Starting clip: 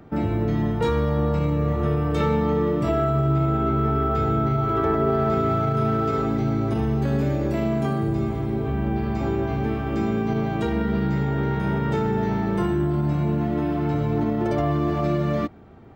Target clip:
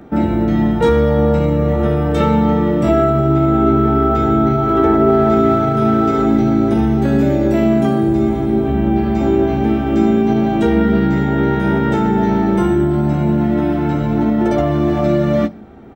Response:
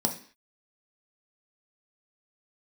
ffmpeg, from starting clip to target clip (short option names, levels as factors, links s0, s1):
-filter_complex "[0:a]asplit=2[s0][s1];[s1]adelay=15,volume=0.398[s2];[s0][s2]amix=inputs=2:normalize=0,asplit=2[s3][s4];[1:a]atrim=start_sample=2205,highshelf=f=7800:g=5.5[s5];[s4][s5]afir=irnorm=-1:irlink=0,volume=0.112[s6];[s3][s6]amix=inputs=2:normalize=0,volume=1.88"